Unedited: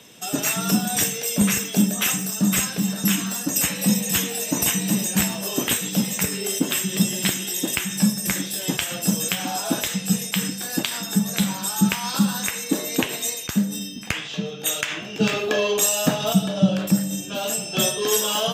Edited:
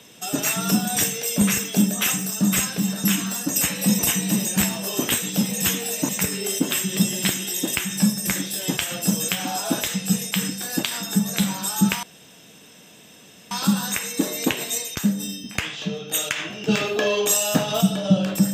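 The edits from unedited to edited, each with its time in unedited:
0:03.99–0:04.58: move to 0:06.09
0:12.03: splice in room tone 1.48 s

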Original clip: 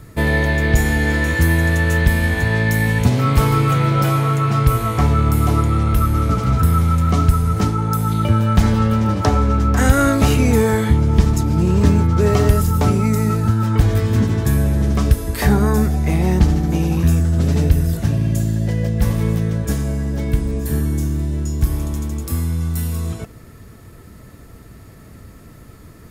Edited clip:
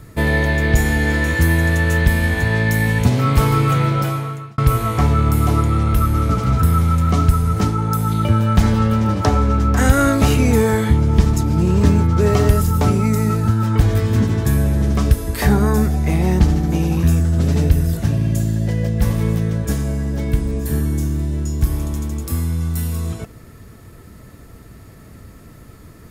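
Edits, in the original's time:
0:03.81–0:04.58: fade out

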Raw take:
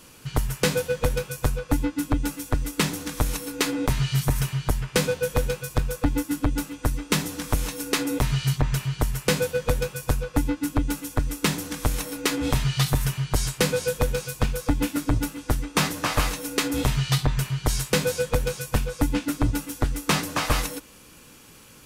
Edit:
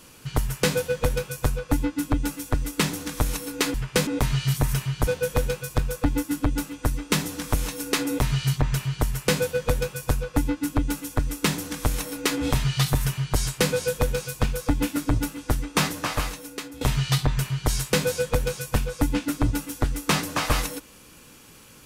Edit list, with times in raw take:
0:04.74–0:05.07: move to 0:03.74
0:15.81–0:16.81: fade out, to −18.5 dB

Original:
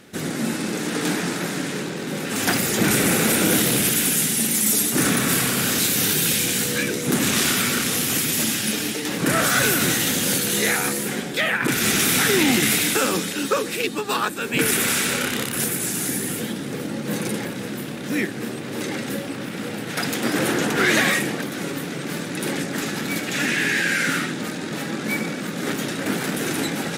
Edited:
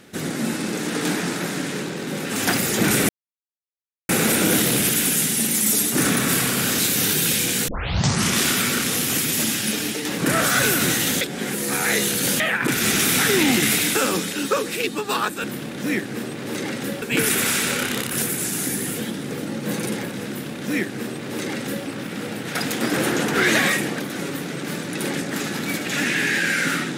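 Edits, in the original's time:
0:03.09: splice in silence 1.00 s
0:06.68: tape start 0.70 s
0:10.21–0:11.40: reverse
0:17.70–0:19.28: duplicate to 0:14.44

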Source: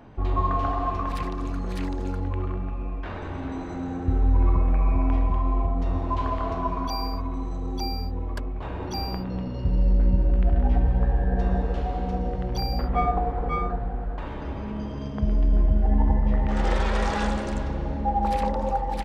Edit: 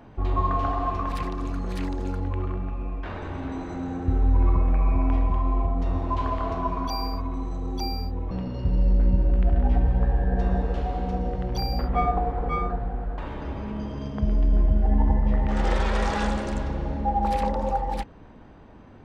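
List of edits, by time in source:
0:08.31–0:09.31: remove

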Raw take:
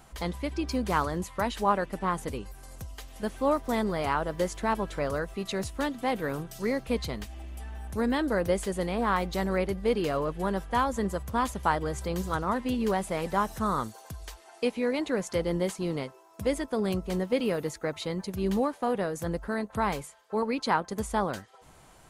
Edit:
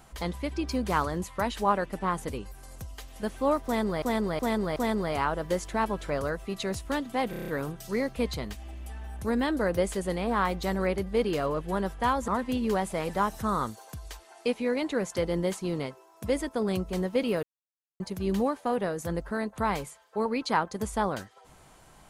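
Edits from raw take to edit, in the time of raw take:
0:03.65–0:04.02: repeat, 4 plays
0:06.19: stutter 0.03 s, 7 plays
0:10.99–0:12.45: remove
0:17.60–0:18.17: silence

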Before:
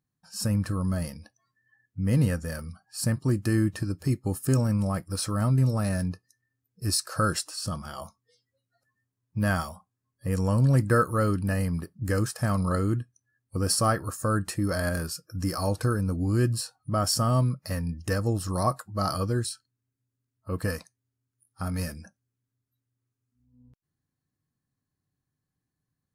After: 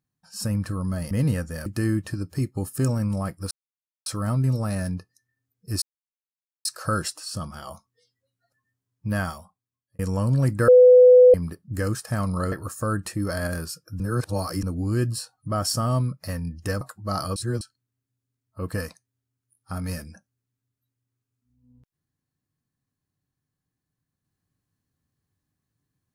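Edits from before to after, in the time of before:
0:01.11–0:02.05: remove
0:02.60–0:03.35: remove
0:05.20: splice in silence 0.55 s
0:06.96: splice in silence 0.83 s
0:09.41–0:10.30: fade out
0:10.99–0:11.65: beep over 500 Hz −8 dBFS
0:12.83–0:13.94: remove
0:15.42–0:16.05: reverse
0:18.23–0:18.71: remove
0:19.26–0:19.51: reverse

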